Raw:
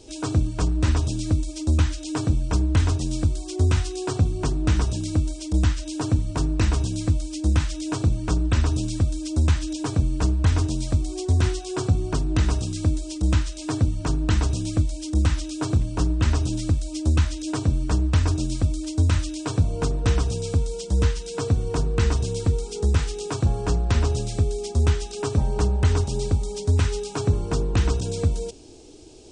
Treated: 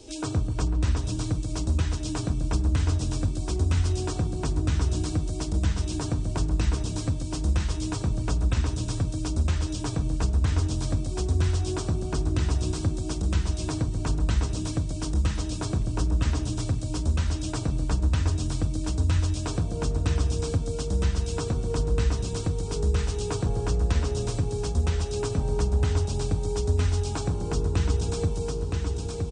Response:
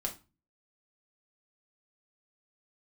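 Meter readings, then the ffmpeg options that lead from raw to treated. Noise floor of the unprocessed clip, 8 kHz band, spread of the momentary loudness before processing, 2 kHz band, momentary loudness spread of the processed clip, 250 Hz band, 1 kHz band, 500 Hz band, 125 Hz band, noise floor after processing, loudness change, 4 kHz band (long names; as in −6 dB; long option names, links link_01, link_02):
−36 dBFS, −2.5 dB, 4 LU, −4.5 dB, 4 LU, −4.0 dB, −3.5 dB, −2.5 dB, −3.5 dB, −32 dBFS, −3.5 dB, −3.0 dB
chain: -filter_complex "[0:a]acrossover=split=180|3000[link_01][link_02][link_03];[link_02]acompressor=threshold=-26dB:ratio=6[link_04];[link_01][link_04][link_03]amix=inputs=3:normalize=0,asplit=2[link_05][link_06];[link_06]aecho=0:1:968|1936|2904|3872|4840|5808:0.501|0.231|0.106|0.0488|0.0224|0.0103[link_07];[link_05][link_07]amix=inputs=2:normalize=0,acompressor=threshold=-30dB:ratio=1.5,asplit=2[link_08][link_09];[link_09]adelay=137,lowpass=frequency=910:poles=1,volume=-7dB,asplit=2[link_10][link_11];[link_11]adelay=137,lowpass=frequency=910:poles=1,volume=0.47,asplit=2[link_12][link_13];[link_13]adelay=137,lowpass=frequency=910:poles=1,volume=0.47,asplit=2[link_14][link_15];[link_15]adelay=137,lowpass=frequency=910:poles=1,volume=0.47,asplit=2[link_16][link_17];[link_17]adelay=137,lowpass=frequency=910:poles=1,volume=0.47,asplit=2[link_18][link_19];[link_19]adelay=137,lowpass=frequency=910:poles=1,volume=0.47[link_20];[link_10][link_12][link_14][link_16][link_18][link_20]amix=inputs=6:normalize=0[link_21];[link_08][link_21]amix=inputs=2:normalize=0"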